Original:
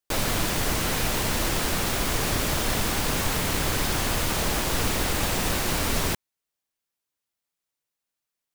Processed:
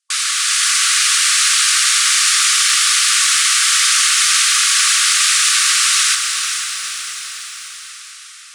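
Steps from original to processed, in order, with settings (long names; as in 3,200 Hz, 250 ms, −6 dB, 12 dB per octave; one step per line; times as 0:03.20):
Butterworth low-pass 10,000 Hz 48 dB per octave
high-shelf EQ 2,900 Hz +10.5 dB
automatic gain control gain up to 4.5 dB
soft clipping −6.5 dBFS, distortion −26 dB
linear-phase brick-wall high-pass 1,100 Hz
on a send: feedback delay with all-pass diffusion 462 ms, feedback 60%, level −6.5 dB
on the sum: dense smooth reverb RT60 3.3 s, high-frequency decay 0.8×, pre-delay 75 ms, DRR 14 dB
feedback echo at a low word length 81 ms, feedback 80%, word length 6 bits, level −15 dB
level +5 dB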